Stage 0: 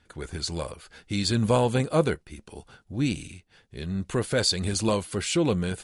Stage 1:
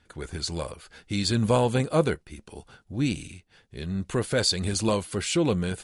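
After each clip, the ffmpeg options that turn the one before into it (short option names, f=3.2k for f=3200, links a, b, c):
-af anull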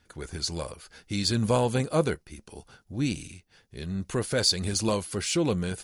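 -af "aexciter=amount=1.3:drive=7.2:freq=4.8k,volume=-2dB"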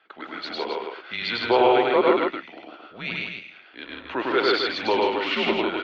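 -af "aecho=1:1:102|154.5|265.3:0.891|0.708|0.501,highpass=f=530:t=q:w=0.5412,highpass=f=530:t=q:w=1.307,lowpass=f=3.5k:t=q:w=0.5176,lowpass=f=3.5k:t=q:w=0.7071,lowpass=f=3.5k:t=q:w=1.932,afreqshift=-120,volume=8dB"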